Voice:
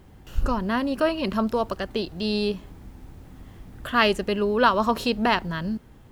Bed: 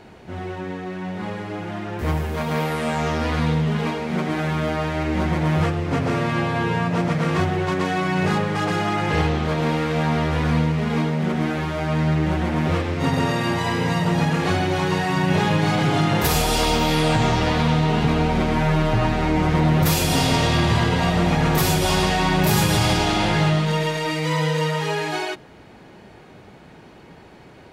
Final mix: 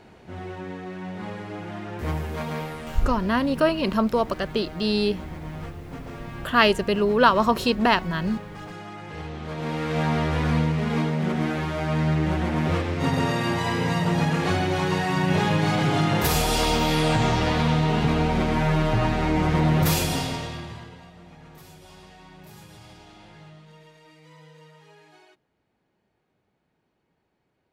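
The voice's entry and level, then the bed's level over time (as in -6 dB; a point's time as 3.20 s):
2.60 s, +2.0 dB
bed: 2.43 s -5 dB
3.05 s -16.5 dB
9.16 s -16.5 dB
9.99 s -2.5 dB
19.97 s -2.5 dB
21.11 s -28.5 dB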